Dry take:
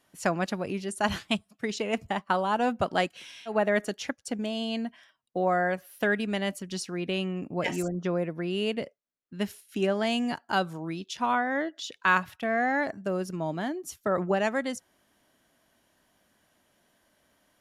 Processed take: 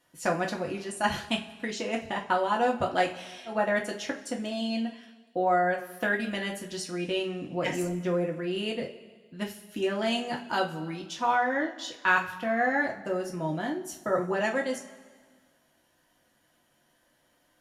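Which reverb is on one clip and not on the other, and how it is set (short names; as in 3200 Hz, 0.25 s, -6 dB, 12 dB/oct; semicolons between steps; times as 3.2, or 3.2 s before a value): two-slope reverb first 0.26 s, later 1.6 s, from -18 dB, DRR -1 dB; gain -3.5 dB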